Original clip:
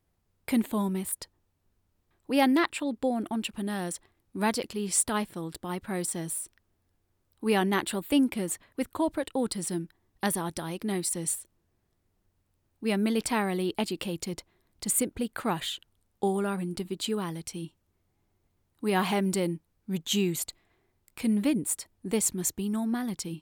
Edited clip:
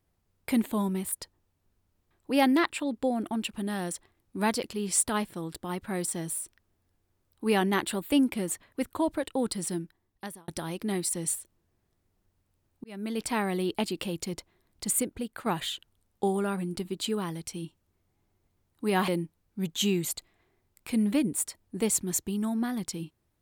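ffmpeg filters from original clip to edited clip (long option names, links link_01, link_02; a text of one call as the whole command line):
ffmpeg -i in.wav -filter_complex "[0:a]asplit=5[link_01][link_02][link_03][link_04][link_05];[link_01]atrim=end=10.48,asetpts=PTS-STARTPTS,afade=type=out:start_time=9.69:duration=0.79[link_06];[link_02]atrim=start=10.48:end=12.84,asetpts=PTS-STARTPTS,afade=type=in:duration=0.004:curve=hsin,afade=type=out:start_time=2.356:duration=0.004:curve=hsin[link_07];[link_03]atrim=start=12.84:end=15.46,asetpts=PTS-STARTPTS,afade=type=in:duration=0.8:curve=qsin,afade=type=out:start_time=2:duration=0.62:silence=0.473151[link_08];[link_04]atrim=start=15.46:end=19.082,asetpts=PTS-STARTPTS,afade=type=in:duration=0.004:curve=hsin:silence=0.473151[link_09];[link_05]atrim=start=19.388[link_10];[link_06][link_07][link_08][link_09]concat=n=4:v=0:a=1[link_11];[link_11][link_10]acrossfade=duration=0.004:curve1=hsin:curve2=hsin" out.wav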